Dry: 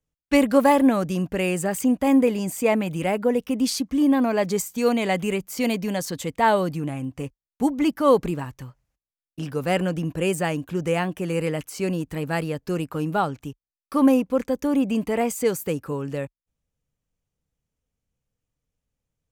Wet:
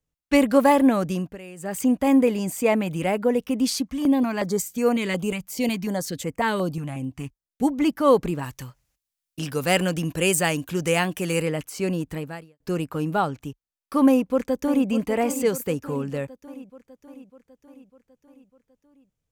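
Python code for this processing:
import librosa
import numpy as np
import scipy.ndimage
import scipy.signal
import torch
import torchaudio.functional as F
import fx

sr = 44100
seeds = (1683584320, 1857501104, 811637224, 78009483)

y = fx.filter_held_notch(x, sr, hz=5.5, low_hz=370.0, high_hz=3700.0, at=(3.87, 7.63))
y = fx.high_shelf(y, sr, hz=2200.0, db=11.0, at=(8.42, 11.41), fade=0.02)
y = fx.echo_throw(y, sr, start_s=14.07, length_s=0.82, ms=600, feedback_pct=60, wet_db=-11.0)
y = fx.edit(y, sr, fx.fade_down_up(start_s=1.12, length_s=0.71, db=-17.0, fade_s=0.27),
    fx.fade_out_span(start_s=12.13, length_s=0.47, curve='qua'), tone=tone)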